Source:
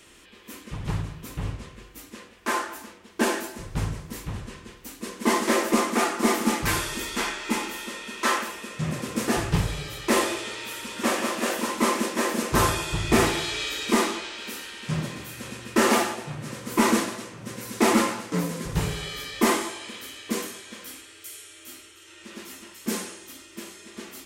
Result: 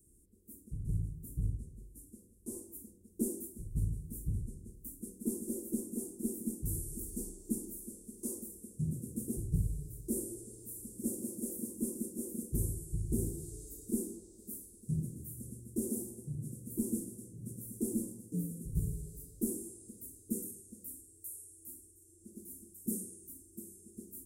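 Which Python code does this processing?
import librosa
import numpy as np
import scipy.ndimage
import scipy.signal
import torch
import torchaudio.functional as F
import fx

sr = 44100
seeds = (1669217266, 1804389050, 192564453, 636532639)

y = fx.cvsd(x, sr, bps=64000, at=(1.89, 2.59))
y = scipy.signal.sosfilt(scipy.signal.ellip(3, 1.0, 70, [440.0, 9100.0], 'bandstop', fs=sr, output='sos'), y)
y = fx.tone_stack(y, sr, knobs='6-0-2')
y = fx.rider(y, sr, range_db=3, speed_s=0.5)
y = F.gain(torch.from_numpy(y), 9.5).numpy()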